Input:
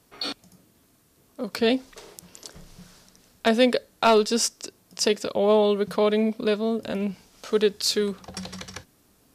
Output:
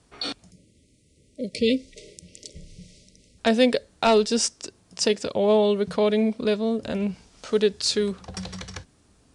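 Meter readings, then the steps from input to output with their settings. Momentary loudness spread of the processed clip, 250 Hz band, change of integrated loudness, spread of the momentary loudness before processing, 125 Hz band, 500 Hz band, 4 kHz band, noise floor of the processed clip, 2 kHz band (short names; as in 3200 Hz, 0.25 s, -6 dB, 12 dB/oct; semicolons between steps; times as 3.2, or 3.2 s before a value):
21 LU, +1.0 dB, 0.0 dB, 20 LU, n/a, 0.0 dB, 0.0 dB, -61 dBFS, -1.0 dB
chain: dynamic EQ 1200 Hz, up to -5 dB, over -39 dBFS, Q 2.3; spectral delete 0.5–3.39, 630–1900 Hz; steep low-pass 10000 Hz 72 dB/oct; bell 60 Hz +9 dB 1.8 oct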